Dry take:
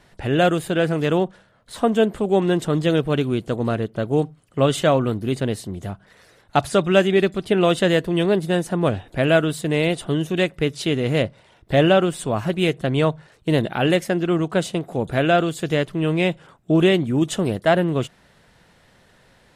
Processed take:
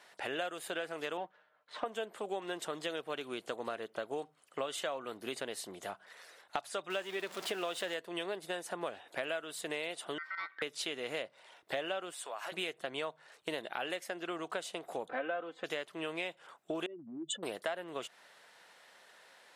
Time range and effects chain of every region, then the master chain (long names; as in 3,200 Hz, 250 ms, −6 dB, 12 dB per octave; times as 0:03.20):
0:01.17–0:01.86: mu-law and A-law mismatch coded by A + low-pass filter 2,600 Hz + comb filter 6.6 ms, depth 52%
0:06.90–0:07.94: converter with a step at zero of −26 dBFS + high-shelf EQ 9,600 Hz −4.5 dB
0:10.18–0:10.62: downward compressor 2 to 1, threshold −35 dBFS + ring modulation 1,700 Hz + high-frequency loss of the air 300 metres
0:12.12–0:12.52: high-pass filter 570 Hz + downward compressor 4 to 1, threshold −33 dBFS
0:15.08–0:15.64: low-pass filter 1,600 Hz + comb filter 3.9 ms, depth 93%
0:16.86–0:17.43: expanding power law on the bin magnitudes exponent 3 + downward compressor 4 to 1, threshold −25 dBFS
whole clip: high-pass filter 630 Hz 12 dB per octave; downward compressor 6 to 1, threshold −33 dBFS; level −2 dB